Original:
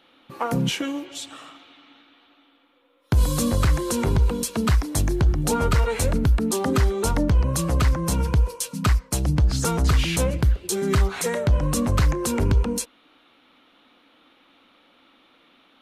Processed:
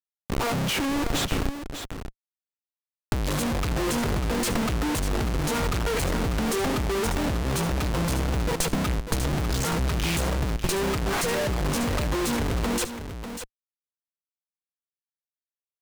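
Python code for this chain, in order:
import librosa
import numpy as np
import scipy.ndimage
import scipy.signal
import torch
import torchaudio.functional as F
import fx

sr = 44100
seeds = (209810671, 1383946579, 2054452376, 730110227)

p1 = fx.schmitt(x, sr, flips_db=-35.0)
p2 = fx.power_curve(p1, sr, exponent=2.0)
p3 = p2 + fx.echo_single(p2, sr, ms=595, db=-9.5, dry=0)
p4 = fx.doppler_dist(p3, sr, depth_ms=0.13)
y = p4 * librosa.db_to_amplitude(2.5)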